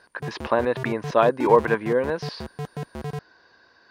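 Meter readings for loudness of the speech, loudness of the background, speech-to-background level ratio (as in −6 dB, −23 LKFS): −22.5 LKFS, −34.5 LKFS, 12.0 dB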